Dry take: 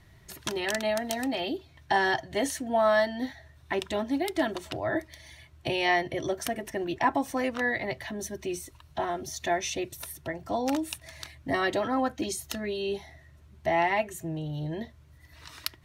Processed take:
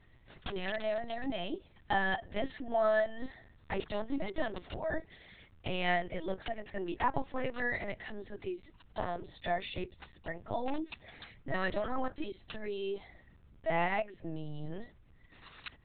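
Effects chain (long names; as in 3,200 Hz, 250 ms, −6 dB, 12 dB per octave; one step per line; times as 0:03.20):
linear-prediction vocoder at 8 kHz pitch kept
level −5.5 dB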